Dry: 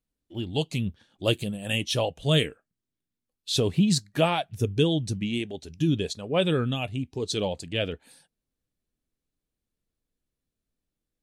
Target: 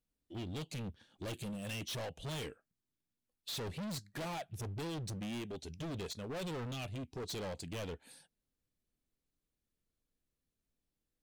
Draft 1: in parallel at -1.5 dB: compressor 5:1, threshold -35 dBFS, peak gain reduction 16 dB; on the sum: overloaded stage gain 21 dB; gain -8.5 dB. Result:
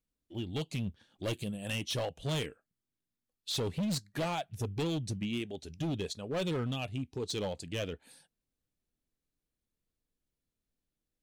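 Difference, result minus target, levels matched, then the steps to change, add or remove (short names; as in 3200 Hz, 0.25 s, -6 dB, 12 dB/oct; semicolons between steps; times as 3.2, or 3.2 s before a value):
overloaded stage: distortion -6 dB
change: overloaded stage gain 30.5 dB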